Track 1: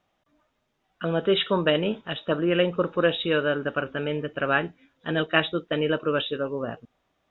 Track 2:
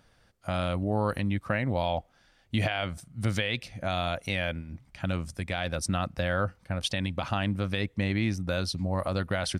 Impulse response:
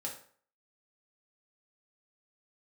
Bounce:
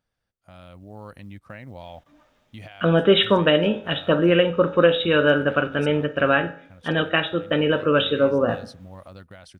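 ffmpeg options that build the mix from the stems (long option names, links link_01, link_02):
-filter_complex "[0:a]adelay=1800,volume=1dB,asplit=2[link_01][link_02];[link_02]volume=-3.5dB[link_03];[1:a]acrusher=bits=9:mode=log:mix=0:aa=0.000001,volume=-18dB[link_04];[2:a]atrim=start_sample=2205[link_05];[link_03][link_05]afir=irnorm=-1:irlink=0[link_06];[link_01][link_04][link_06]amix=inputs=3:normalize=0,dynaudnorm=framelen=350:gausssize=5:maxgain=6.5dB,alimiter=limit=-5.5dB:level=0:latency=1:release=375"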